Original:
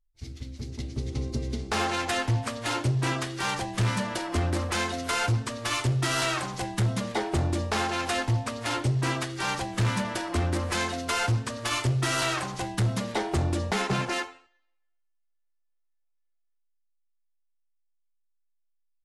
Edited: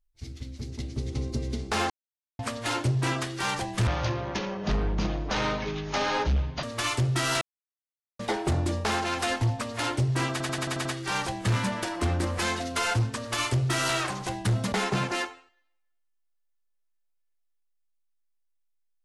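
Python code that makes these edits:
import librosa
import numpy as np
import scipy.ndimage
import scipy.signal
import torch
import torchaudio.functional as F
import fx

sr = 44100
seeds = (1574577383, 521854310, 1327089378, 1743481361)

y = fx.edit(x, sr, fx.silence(start_s=1.9, length_s=0.49),
    fx.speed_span(start_s=3.87, length_s=1.63, speed=0.59),
    fx.silence(start_s=6.28, length_s=0.78),
    fx.stutter(start_s=9.18, slice_s=0.09, count=7),
    fx.cut(start_s=13.05, length_s=0.65), tone=tone)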